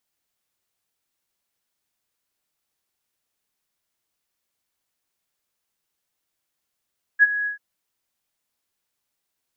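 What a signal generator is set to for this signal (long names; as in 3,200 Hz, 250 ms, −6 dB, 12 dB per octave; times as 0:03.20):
note with an ADSR envelope sine 1,670 Hz, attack 39 ms, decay 30 ms, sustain −14 dB, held 0.27 s, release 119 ms −8 dBFS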